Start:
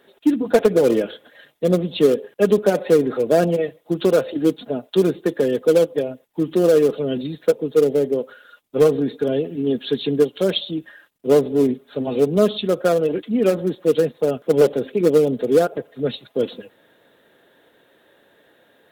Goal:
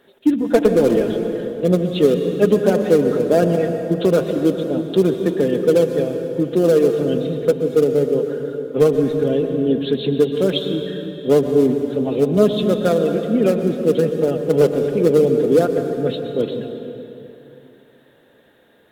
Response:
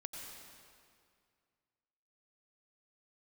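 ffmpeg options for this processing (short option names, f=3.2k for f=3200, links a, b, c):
-filter_complex "[0:a]asplit=2[a][b];[1:a]atrim=start_sample=2205,asetrate=32634,aresample=44100,lowshelf=f=290:g=11[c];[b][c]afir=irnorm=-1:irlink=0,volume=0.5dB[d];[a][d]amix=inputs=2:normalize=0,volume=-5.5dB"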